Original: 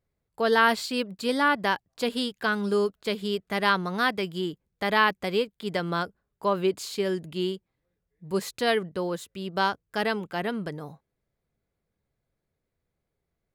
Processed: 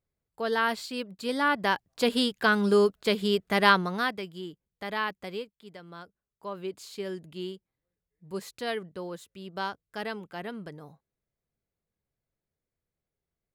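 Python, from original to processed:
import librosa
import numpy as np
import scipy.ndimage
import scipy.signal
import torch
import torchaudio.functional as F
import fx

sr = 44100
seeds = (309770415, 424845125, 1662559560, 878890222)

y = fx.gain(x, sr, db=fx.line((1.08, -6.0), (2.11, 3.0), (3.71, 3.0), (4.3, -9.0), (5.31, -9.0), (5.78, -18.5), (7.01, -8.0)))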